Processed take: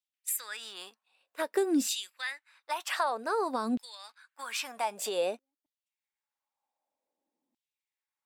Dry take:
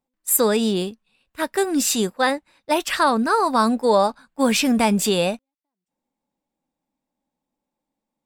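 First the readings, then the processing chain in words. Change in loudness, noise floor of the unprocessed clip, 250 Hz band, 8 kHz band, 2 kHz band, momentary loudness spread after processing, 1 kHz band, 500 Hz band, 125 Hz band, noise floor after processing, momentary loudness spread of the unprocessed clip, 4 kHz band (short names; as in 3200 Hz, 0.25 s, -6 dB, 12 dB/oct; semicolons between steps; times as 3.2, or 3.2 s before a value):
-12.5 dB, -85 dBFS, -14.0 dB, -12.5 dB, -11.5 dB, 17 LU, -13.0 dB, -13.0 dB, under -25 dB, under -85 dBFS, 8 LU, -11.5 dB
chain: compressor, threshold -24 dBFS, peak gain reduction 11.5 dB; LFO high-pass saw down 0.53 Hz 250–3400 Hz; gain -6.5 dB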